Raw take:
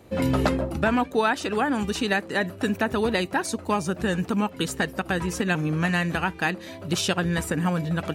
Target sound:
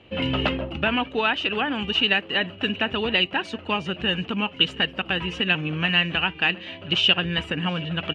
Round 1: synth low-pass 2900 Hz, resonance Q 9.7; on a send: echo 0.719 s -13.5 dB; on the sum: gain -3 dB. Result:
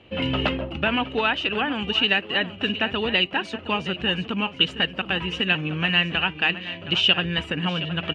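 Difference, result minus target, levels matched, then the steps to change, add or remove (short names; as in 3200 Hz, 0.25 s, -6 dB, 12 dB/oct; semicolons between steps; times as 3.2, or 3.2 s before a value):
echo-to-direct +9 dB
change: echo 0.719 s -22.5 dB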